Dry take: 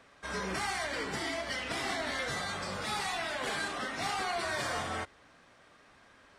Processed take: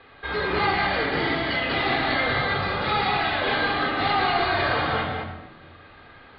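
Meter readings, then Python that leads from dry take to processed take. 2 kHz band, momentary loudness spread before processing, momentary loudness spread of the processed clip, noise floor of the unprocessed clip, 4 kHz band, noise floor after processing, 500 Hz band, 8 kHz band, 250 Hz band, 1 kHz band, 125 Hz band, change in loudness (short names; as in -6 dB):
+11.5 dB, 3 LU, 6 LU, -61 dBFS, +10.0 dB, -49 dBFS, +11.5 dB, under -30 dB, +12.0 dB, +12.5 dB, +14.0 dB, +11.0 dB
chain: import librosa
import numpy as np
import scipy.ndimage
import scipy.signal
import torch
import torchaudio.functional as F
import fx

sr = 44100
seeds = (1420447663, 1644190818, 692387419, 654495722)

y = scipy.signal.sosfilt(scipy.signal.butter(16, 4500.0, 'lowpass', fs=sr, output='sos'), x)
y = y + 10.0 ** (-5.0 / 20.0) * np.pad(y, (int(190 * sr / 1000.0), 0))[:len(y)]
y = fx.room_shoebox(y, sr, seeds[0], volume_m3=3800.0, walls='furnished', distance_m=3.9)
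y = F.gain(torch.from_numpy(y), 7.0).numpy()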